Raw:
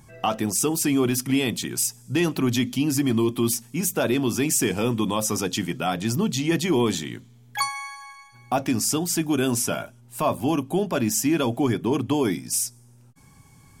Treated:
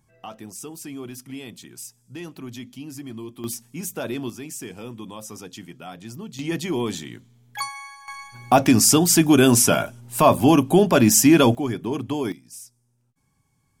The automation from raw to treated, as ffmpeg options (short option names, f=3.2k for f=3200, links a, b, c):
-af "asetnsamples=n=441:p=0,asendcmd='3.44 volume volume -6.5dB;4.3 volume volume -13dB;6.39 volume volume -4dB;8.08 volume volume 8dB;11.55 volume volume -3.5dB;12.32 volume volume -16dB',volume=-14dB"